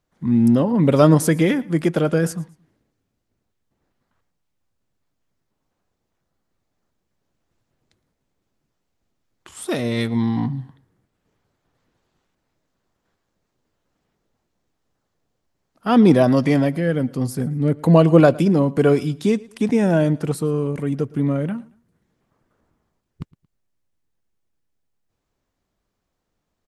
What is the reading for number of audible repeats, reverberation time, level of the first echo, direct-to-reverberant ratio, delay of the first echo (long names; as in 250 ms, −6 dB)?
2, no reverb audible, −22.5 dB, no reverb audible, 113 ms